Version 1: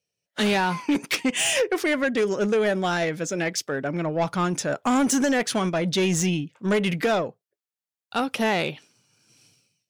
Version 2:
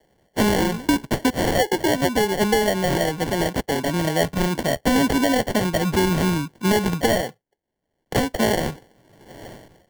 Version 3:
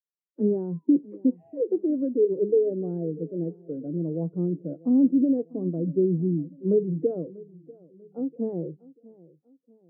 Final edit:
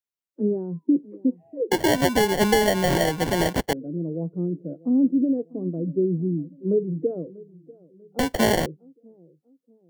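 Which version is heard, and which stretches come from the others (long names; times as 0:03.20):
3
0:01.71–0:03.73: punch in from 2
0:08.19–0:08.66: punch in from 2
not used: 1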